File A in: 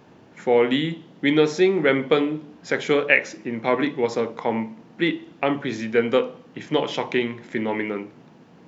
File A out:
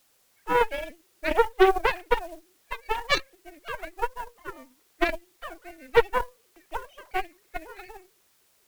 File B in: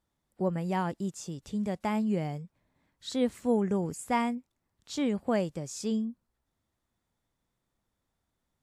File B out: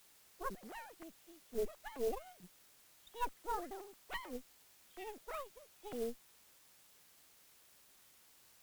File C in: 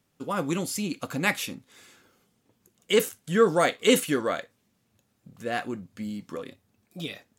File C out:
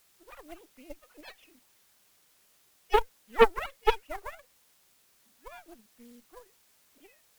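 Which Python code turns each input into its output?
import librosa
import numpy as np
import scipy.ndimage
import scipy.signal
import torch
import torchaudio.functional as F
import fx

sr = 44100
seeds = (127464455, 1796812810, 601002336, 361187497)

y = fx.sine_speech(x, sr)
y = fx.quant_dither(y, sr, seeds[0], bits=8, dither='triangular')
y = fx.cheby_harmonics(y, sr, harmonics=(6, 7), levels_db=(-11, -15), full_scale_db=-3.0)
y = F.gain(torch.from_numpy(y), -5.0).numpy()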